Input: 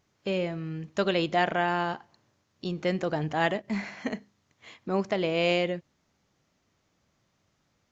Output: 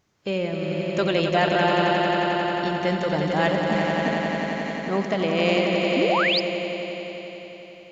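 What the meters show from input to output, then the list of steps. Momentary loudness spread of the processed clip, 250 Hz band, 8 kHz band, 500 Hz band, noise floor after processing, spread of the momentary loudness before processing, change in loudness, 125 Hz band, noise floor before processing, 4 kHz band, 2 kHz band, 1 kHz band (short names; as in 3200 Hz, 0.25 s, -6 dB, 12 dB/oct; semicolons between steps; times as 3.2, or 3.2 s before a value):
11 LU, +7.5 dB, n/a, +7.5 dB, -44 dBFS, 11 LU, +6.0 dB, +6.5 dB, -74 dBFS, +9.0 dB, +8.0 dB, +7.5 dB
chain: swelling echo 89 ms, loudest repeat 5, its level -6.5 dB; painted sound rise, 5.96–6.4, 230–5300 Hz -25 dBFS; gain +2.5 dB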